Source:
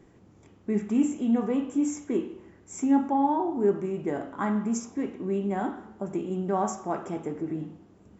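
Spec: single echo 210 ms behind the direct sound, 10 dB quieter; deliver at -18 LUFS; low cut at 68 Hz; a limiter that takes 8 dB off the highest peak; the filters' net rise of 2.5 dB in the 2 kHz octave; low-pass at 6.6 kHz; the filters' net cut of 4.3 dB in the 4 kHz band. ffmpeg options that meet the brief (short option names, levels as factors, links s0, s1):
-af "highpass=68,lowpass=6600,equalizer=f=2000:t=o:g=5,equalizer=f=4000:t=o:g=-8.5,alimiter=limit=0.1:level=0:latency=1,aecho=1:1:210:0.316,volume=3.98"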